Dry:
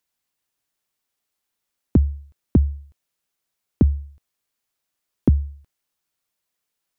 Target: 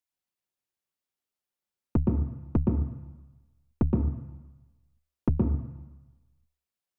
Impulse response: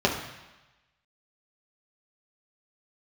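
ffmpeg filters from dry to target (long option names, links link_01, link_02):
-filter_complex "[0:a]aeval=exprs='0.501*(cos(1*acos(clip(val(0)/0.501,-1,1)))-cos(1*PI/2))+0.0501*(cos(3*acos(clip(val(0)/0.501,-1,1)))-cos(3*PI/2))+0.0631*(cos(4*acos(clip(val(0)/0.501,-1,1)))-cos(4*PI/2))+0.00398*(cos(7*acos(clip(val(0)/0.501,-1,1)))-cos(7*PI/2))+0.0141*(cos(8*acos(clip(val(0)/0.501,-1,1)))-cos(8*PI/2))':channel_layout=same,asplit=2[link_01][link_02];[1:a]atrim=start_sample=2205,asetrate=41895,aresample=44100,adelay=119[link_03];[link_02][link_03]afir=irnorm=-1:irlink=0,volume=-17dB[link_04];[link_01][link_04]amix=inputs=2:normalize=0,volume=-8.5dB"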